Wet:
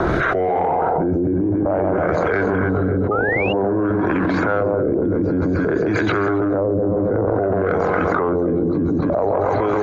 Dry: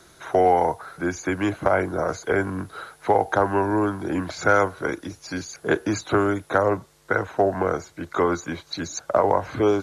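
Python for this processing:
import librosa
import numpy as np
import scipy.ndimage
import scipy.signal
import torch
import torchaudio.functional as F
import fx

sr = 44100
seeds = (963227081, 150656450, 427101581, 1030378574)

p1 = fx.fade_out_tail(x, sr, length_s=0.55)
p2 = fx.rider(p1, sr, range_db=3, speed_s=0.5)
p3 = p2 + fx.echo_split(p2, sr, split_hz=1100.0, low_ms=136, high_ms=276, feedback_pct=52, wet_db=-5.0, dry=0)
p4 = fx.rotary(p3, sr, hz=1.1)
p5 = fx.transient(p4, sr, attack_db=-8, sustain_db=10)
p6 = p5 + 10.0 ** (-16.5 / 20.0) * np.pad(p5, (int(179 * sr / 1000.0), 0))[:len(p5)]
p7 = fx.filter_lfo_lowpass(p6, sr, shape='sine', hz=0.54, low_hz=370.0, high_hz=2200.0, q=1.1)
p8 = fx.spec_paint(p7, sr, seeds[0], shape='rise', start_s=3.11, length_s=0.42, low_hz=1200.0, high_hz=2900.0, level_db=-30.0)
p9 = 10.0 ** (-8.5 / 20.0) * np.tanh(p8 / 10.0 ** (-8.5 / 20.0))
y = fx.env_flatten(p9, sr, amount_pct=100)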